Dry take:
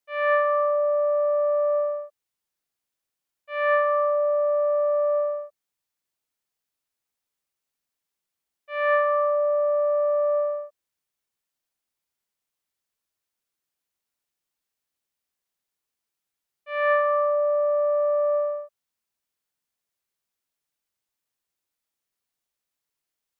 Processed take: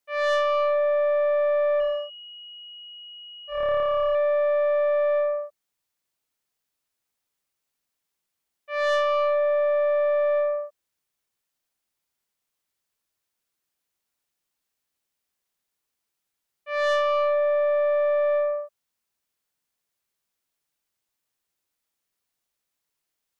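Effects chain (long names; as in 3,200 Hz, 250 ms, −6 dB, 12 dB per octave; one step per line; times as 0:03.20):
soft clipping −21 dBFS, distortion −14 dB
0:01.80–0:04.15: switching amplifier with a slow clock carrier 2,900 Hz
level +3 dB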